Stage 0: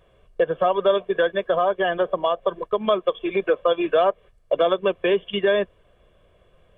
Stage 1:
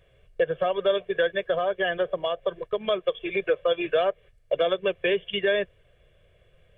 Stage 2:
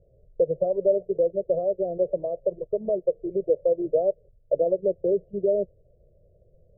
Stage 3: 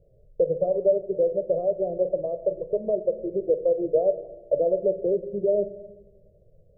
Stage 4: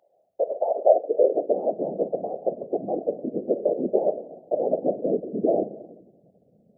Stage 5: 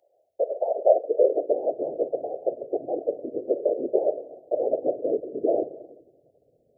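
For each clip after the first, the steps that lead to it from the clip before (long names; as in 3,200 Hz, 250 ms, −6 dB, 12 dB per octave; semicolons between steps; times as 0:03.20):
graphic EQ with 10 bands 125 Hz +6 dB, 250 Hz −11 dB, 500 Hz +3 dB, 1,000 Hz −11 dB, 2,000 Hz +6 dB; level −2 dB
elliptic low-pass filter 610 Hz, stop band 60 dB; level +2.5 dB
rectangular room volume 570 cubic metres, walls mixed, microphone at 0.43 metres
random phases in short frames; high-pass filter sweep 750 Hz → 200 Hz, 0:00.76–0:01.79; level −2.5 dB
phaser with its sweep stopped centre 480 Hz, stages 4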